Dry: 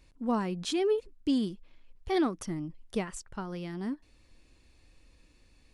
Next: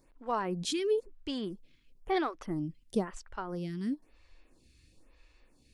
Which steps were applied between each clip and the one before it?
lamp-driven phase shifter 1 Hz; trim +2.5 dB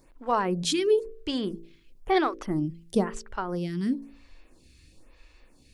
de-hum 55.82 Hz, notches 10; trim +7 dB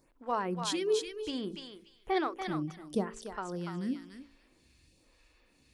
high-pass 56 Hz 6 dB/octave; on a send: thinning echo 289 ms, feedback 17%, high-pass 1 kHz, level -3.5 dB; on the sum: trim -7 dB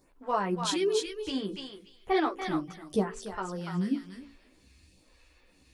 chorus voices 6, 0.97 Hz, delay 13 ms, depth 3 ms; trim +6.5 dB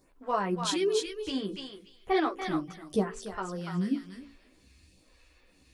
band-stop 880 Hz, Q 20

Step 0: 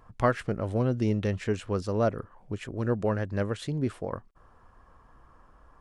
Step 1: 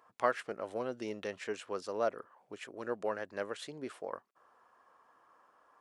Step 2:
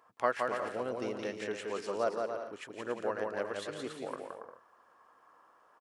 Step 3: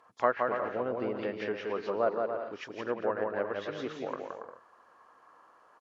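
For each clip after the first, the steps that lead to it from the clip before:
high-pass 470 Hz 12 dB/octave; trim -4 dB
bouncing-ball echo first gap 170 ms, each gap 0.65×, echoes 5
knee-point frequency compression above 3.2 kHz 1.5:1; low-pass that closes with the level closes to 1.9 kHz, closed at -32 dBFS; trim +3.5 dB

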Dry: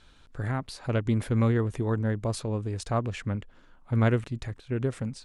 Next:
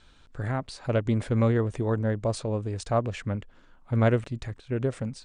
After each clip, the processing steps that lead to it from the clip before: steep low-pass 9.6 kHz 96 dB/octave; dynamic bell 590 Hz, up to +6 dB, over -43 dBFS, Q 2.1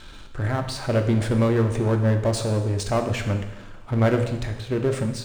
power-law waveshaper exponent 0.7; two-slope reverb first 0.93 s, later 3 s, from -19 dB, DRR 4.5 dB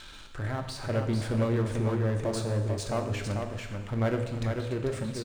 delay 444 ms -5 dB; tape noise reduction on one side only encoder only; trim -8 dB

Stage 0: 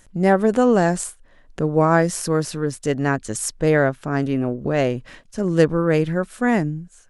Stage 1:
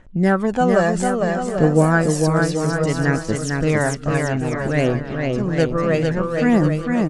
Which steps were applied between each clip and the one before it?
phaser 0.6 Hz, delay 1.8 ms, feedback 55%; bouncing-ball echo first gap 450 ms, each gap 0.75×, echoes 5; level-controlled noise filter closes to 2.6 kHz, open at -9.5 dBFS; trim -1 dB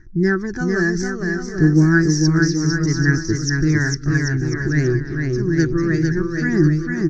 FFT filter 150 Hz 0 dB, 240 Hz -11 dB, 350 Hz +6 dB, 530 Hz -28 dB, 1.2 kHz -13 dB, 1.7 kHz +2 dB, 2.9 kHz -26 dB, 5.8 kHz +8 dB, 8.5 kHz -30 dB; trim +4 dB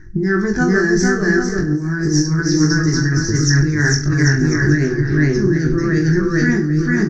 compressor with a negative ratio -20 dBFS, ratio -1; on a send: reverse bouncing-ball echo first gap 20 ms, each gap 1.15×, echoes 5; on the sum: trim +3 dB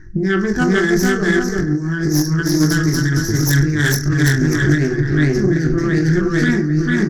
self-modulated delay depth 0.16 ms

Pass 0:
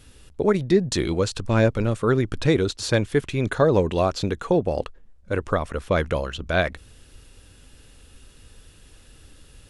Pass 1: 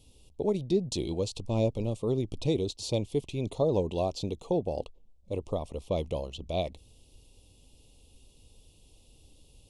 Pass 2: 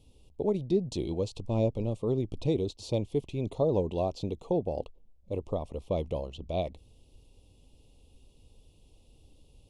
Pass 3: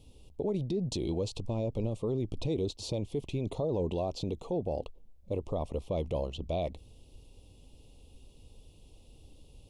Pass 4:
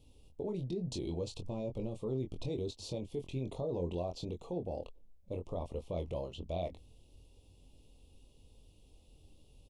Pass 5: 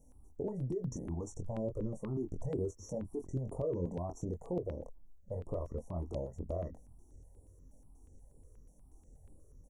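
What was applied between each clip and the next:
Chebyshev band-stop 820–3000 Hz, order 2; trim -7.5 dB
treble shelf 3 kHz -9.5 dB
peak limiter -27.5 dBFS, peak gain reduction 11.5 dB; trim +3.5 dB
doubling 23 ms -6 dB; trim -6.5 dB
brick-wall FIR band-stop 2–5.5 kHz; stepped phaser 8.3 Hz 360–6100 Hz; trim +3 dB

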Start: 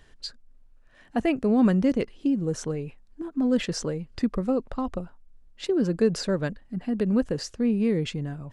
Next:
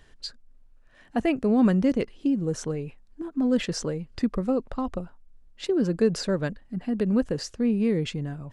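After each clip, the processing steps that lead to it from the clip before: no audible change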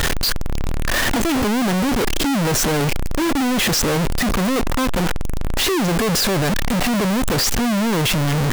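one-bit comparator; trim +8.5 dB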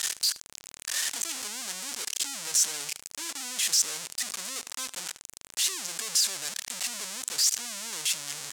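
band-pass filter 7.5 kHz, Q 1.4; delay 77 ms -21.5 dB

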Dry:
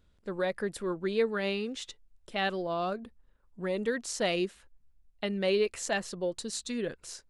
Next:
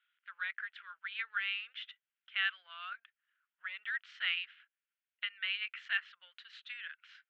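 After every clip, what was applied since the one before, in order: elliptic band-pass 1.4–3.2 kHz, stop band 70 dB; trim +2.5 dB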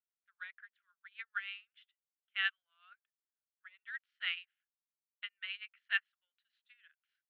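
upward expansion 2.5:1, over -50 dBFS; trim +2.5 dB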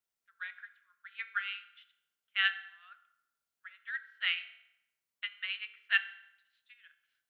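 reverberation RT60 0.85 s, pre-delay 3 ms, DRR 9 dB; trim +5 dB

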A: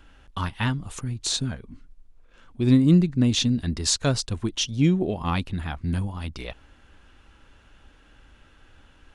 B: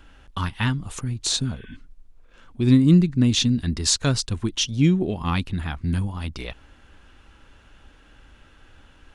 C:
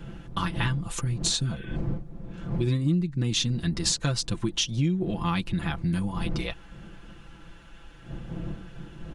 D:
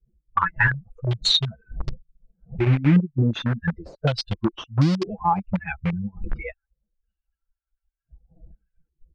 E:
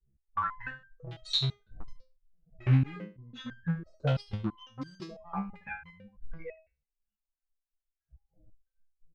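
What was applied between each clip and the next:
spectral replace 1.50–1.73 s, 1.5–3.7 kHz before; dynamic bell 620 Hz, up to -6 dB, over -41 dBFS, Q 1.3; trim +2.5 dB
wind noise 170 Hz -37 dBFS; comb 5.9 ms, depth 73%; compression 5:1, threshold -23 dBFS, peak gain reduction 15 dB
expander on every frequency bin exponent 3; in parallel at -9 dB: bit crusher 5-bit; on the sum: step-sequenced low-pass 2.7 Hz 380–4800 Hz; trim +7.5 dB
delay 75 ms -13.5 dB; resonator arpeggio 6 Hz 66–1600 Hz

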